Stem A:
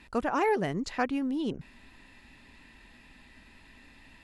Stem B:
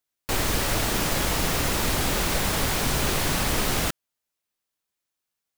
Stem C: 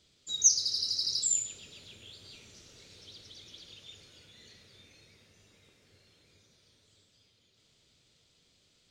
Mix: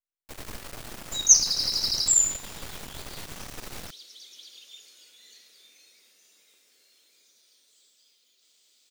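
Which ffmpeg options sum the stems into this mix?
-filter_complex "[1:a]aeval=exprs='max(val(0),0)':c=same,volume=-12.5dB[a];[2:a]highpass=f=220:w=0.5412,highpass=f=220:w=1.3066,aemphasis=mode=production:type=riaa,adelay=850,volume=-3.5dB[b];[a][b]amix=inputs=2:normalize=0"

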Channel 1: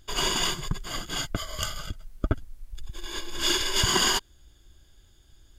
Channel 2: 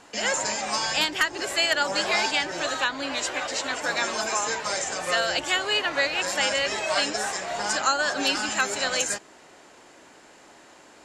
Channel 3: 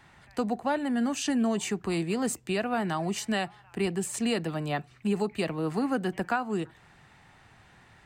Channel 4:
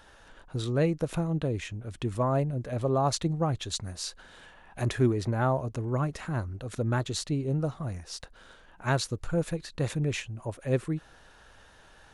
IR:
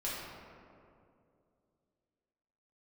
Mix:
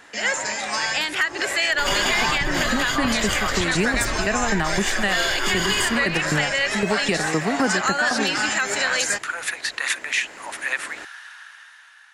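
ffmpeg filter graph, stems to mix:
-filter_complex "[0:a]adelay=1700,volume=-3dB,asplit=2[a][b];[b]volume=-4.5dB[c];[1:a]volume=-1dB[d];[2:a]dynaudnorm=f=300:g=11:m=14.5dB,aeval=exprs='val(0)*pow(10,-18*if(lt(mod(3.9*n/s,1),2*abs(3.9)/1000),1-mod(3.9*n/s,1)/(2*abs(3.9)/1000),(mod(3.9*n/s,1)-2*abs(3.9)/1000)/(1-2*abs(3.9)/1000))/20)':c=same,adelay=1700,volume=-0.5dB[e];[3:a]highpass=f=1.1k:w=0.5412,highpass=f=1.1k:w=1.3066,volume=2.5dB[f];[a][f]amix=inputs=2:normalize=0,dynaudnorm=f=140:g=21:m=6.5dB,alimiter=limit=-19dB:level=0:latency=1:release=169,volume=0dB[g];[4:a]atrim=start_sample=2205[h];[c][h]afir=irnorm=-1:irlink=0[i];[d][e][g][i]amix=inputs=4:normalize=0,equalizer=f=1.9k:t=o:w=0.69:g=8,dynaudnorm=f=490:g=5:m=12dB,alimiter=limit=-11dB:level=0:latency=1:release=97"

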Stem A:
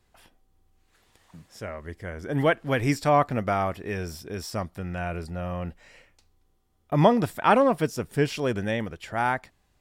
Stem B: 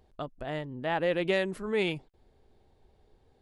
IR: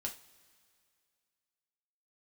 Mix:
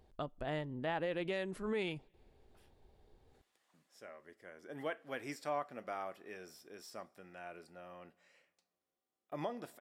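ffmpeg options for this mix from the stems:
-filter_complex "[0:a]highpass=310,bandreject=f=930:w=15,adelay=2400,volume=-18dB,asplit=2[a][b];[b]volume=-7dB[c];[1:a]volume=-3dB,asplit=2[d][e];[e]volume=-21dB[f];[2:a]atrim=start_sample=2205[g];[c][f]amix=inputs=2:normalize=0[h];[h][g]afir=irnorm=-1:irlink=0[i];[a][d][i]amix=inputs=3:normalize=0,alimiter=level_in=3dB:limit=-24dB:level=0:latency=1:release=310,volume=-3dB"

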